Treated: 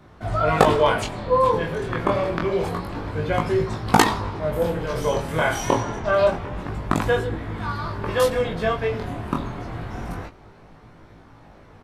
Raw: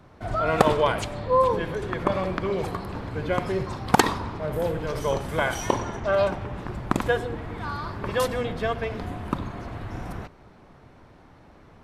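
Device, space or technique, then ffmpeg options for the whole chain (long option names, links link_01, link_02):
double-tracked vocal: -filter_complex "[0:a]asplit=2[link_01][link_02];[link_02]adelay=18,volume=-7dB[link_03];[link_01][link_03]amix=inputs=2:normalize=0,flanger=delay=18.5:depth=6.9:speed=0.27,volume=5.5dB"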